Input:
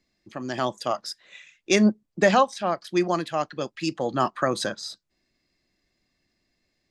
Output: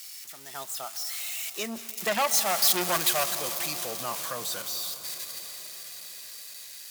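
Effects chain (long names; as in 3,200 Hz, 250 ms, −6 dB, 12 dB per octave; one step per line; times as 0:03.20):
spike at every zero crossing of −17 dBFS
source passing by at 0:02.84, 25 m/s, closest 9.1 metres
parametric band 300 Hz −9 dB 0.54 octaves
delay with a high-pass on its return 186 ms, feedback 82%, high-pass 4,100 Hz, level −14.5 dB
in parallel at +1 dB: output level in coarse steps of 14 dB
on the sum: low-shelf EQ 450 Hz −7 dB
on a send at −12.5 dB: convolution reverb RT60 5.6 s, pre-delay 111 ms
on the sum: saturating transformer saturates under 3,100 Hz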